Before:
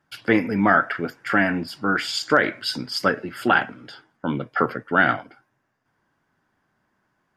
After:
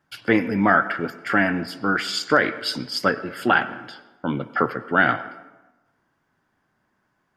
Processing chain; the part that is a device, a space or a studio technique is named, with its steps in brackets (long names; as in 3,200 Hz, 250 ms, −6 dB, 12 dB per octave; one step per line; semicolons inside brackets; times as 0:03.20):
filtered reverb send (on a send: high-pass filter 210 Hz 12 dB per octave + low-pass filter 4,700 Hz + convolution reverb RT60 1.1 s, pre-delay 89 ms, DRR 15.5 dB)